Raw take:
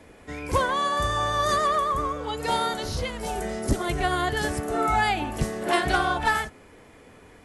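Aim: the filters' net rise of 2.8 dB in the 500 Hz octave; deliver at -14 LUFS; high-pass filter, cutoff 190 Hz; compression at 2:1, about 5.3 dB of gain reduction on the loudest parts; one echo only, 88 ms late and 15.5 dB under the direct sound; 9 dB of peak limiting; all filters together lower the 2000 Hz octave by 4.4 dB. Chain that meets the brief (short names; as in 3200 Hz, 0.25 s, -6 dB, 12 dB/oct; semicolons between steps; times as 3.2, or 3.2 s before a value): HPF 190 Hz; bell 500 Hz +4 dB; bell 2000 Hz -6 dB; compressor 2:1, threshold -28 dBFS; limiter -25 dBFS; echo 88 ms -15.5 dB; gain +19.5 dB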